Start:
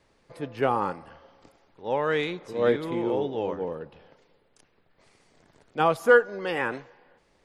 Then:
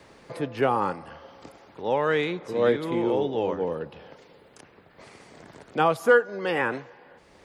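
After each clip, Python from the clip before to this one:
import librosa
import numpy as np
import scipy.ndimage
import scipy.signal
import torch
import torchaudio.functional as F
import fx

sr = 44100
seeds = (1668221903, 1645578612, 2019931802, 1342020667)

y = scipy.signal.sosfilt(scipy.signal.butter(2, 42.0, 'highpass', fs=sr, output='sos'), x)
y = fx.band_squash(y, sr, depth_pct=40)
y = F.gain(torch.from_numpy(y), 2.0).numpy()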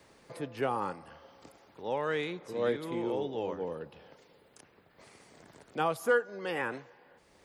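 y = fx.high_shelf(x, sr, hz=7500.0, db=10.5)
y = F.gain(torch.from_numpy(y), -8.5).numpy()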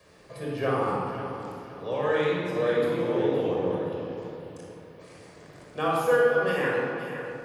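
y = fx.echo_feedback(x, sr, ms=518, feedback_pct=36, wet_db=-11)
y = fx.room_shoebox(y, sr, seeds[0], volume_m3=3300.0, walls='mixed', distance_m=5.7)
y = F.gain(torch.from_numpy(y), -2.0).numpy()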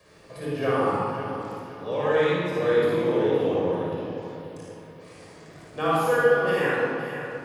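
y = fx.room_early_taps(x, sr, ms=(56, 75), db=(-3.5, -4.5))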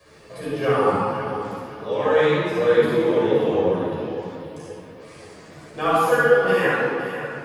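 y = fx.ensemble(x, sr)
y = F.gain(torch.from_numpy(y), 7.0).numpy()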